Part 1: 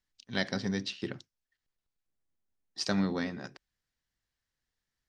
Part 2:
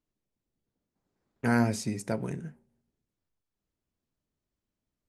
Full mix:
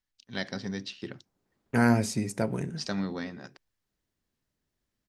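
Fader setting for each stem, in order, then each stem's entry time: -2.5, +2.5 dB; 0.00, 0.30 s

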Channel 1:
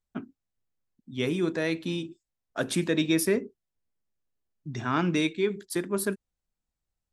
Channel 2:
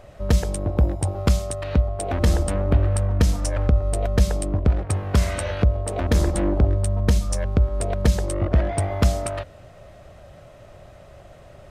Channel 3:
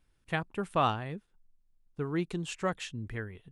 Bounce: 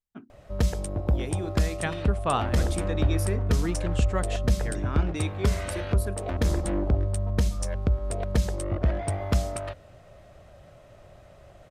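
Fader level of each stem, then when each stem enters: -8.0, -5.5, +1.0 dB; 0.00, 0.30, 1.50 s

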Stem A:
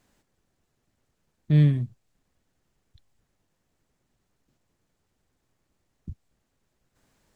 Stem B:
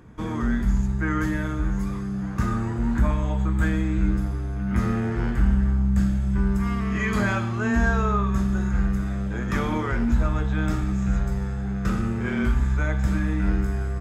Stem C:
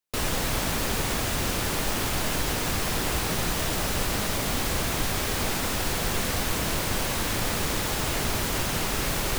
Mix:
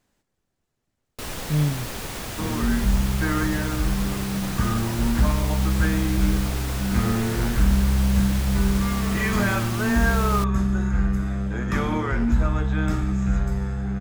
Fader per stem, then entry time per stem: -3.5, +1.0, -5.5 dB; 0.00, 2.20, 1.05 s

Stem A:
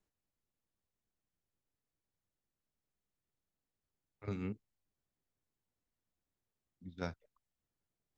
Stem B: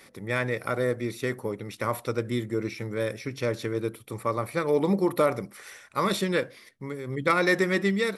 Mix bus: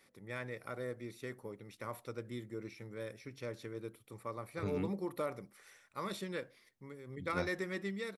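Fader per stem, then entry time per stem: +0.5, -15.0 dB; 0.35, 0.00 s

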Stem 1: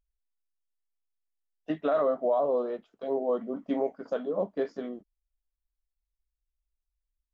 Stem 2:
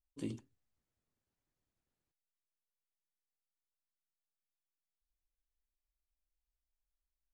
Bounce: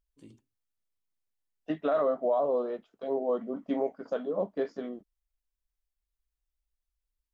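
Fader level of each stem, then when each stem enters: -1.0, -12.5 dB; 0.00, 0.00 s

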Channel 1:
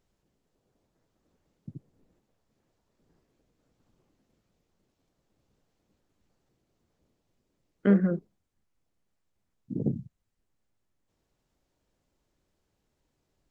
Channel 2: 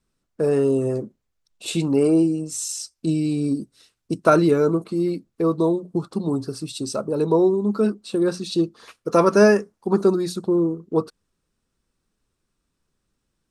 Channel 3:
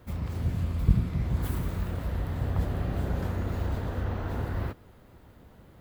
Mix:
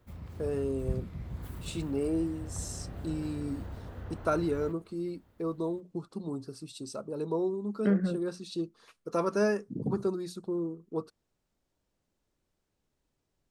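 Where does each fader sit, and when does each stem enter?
-4.5, -13.0, -11.5 dB; 0.00, 0.00, 0.00 s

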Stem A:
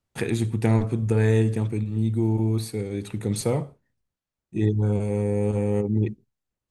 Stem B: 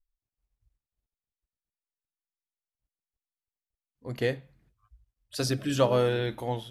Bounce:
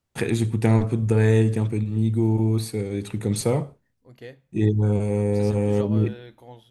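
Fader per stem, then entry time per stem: +2.0, -13.0 dB; 0.00, 0.00 s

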